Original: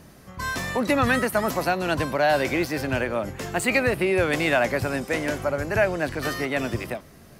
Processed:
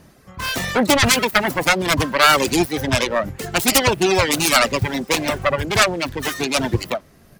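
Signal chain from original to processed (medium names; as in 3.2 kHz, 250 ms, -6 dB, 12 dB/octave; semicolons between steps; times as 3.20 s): self-modulated delay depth 0.72 ms; reverb removal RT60 1.8 s; level rider gain up to 11.5 dB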